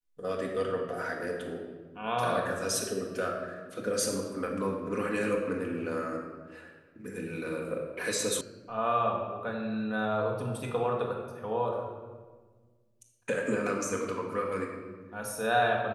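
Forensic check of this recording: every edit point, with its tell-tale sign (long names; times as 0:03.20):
0:08.41: cut off before it has died away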